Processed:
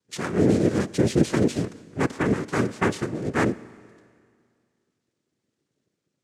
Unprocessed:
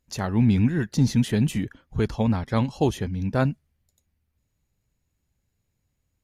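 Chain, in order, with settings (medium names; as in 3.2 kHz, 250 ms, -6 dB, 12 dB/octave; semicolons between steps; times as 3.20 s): noise-vocoded speech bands 3; Schroeder reverb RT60 2.1 s, combs from 29 ms, DRR 18.5 dB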